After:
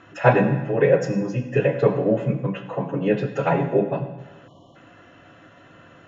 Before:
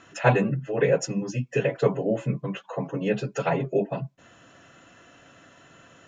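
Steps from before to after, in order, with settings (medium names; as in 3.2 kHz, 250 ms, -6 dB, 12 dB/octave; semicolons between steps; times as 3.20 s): treble shelf 3.6 kHz -11 dB; reverberation RT60 1.2 s, pre-delay 5 ms, DRR 5.5 dB; spectral selection erased 4.47–4.75 s, 1.2–2.8 kHz; low-pass 5.3 kHz 12 dB/octave; trim +4 dB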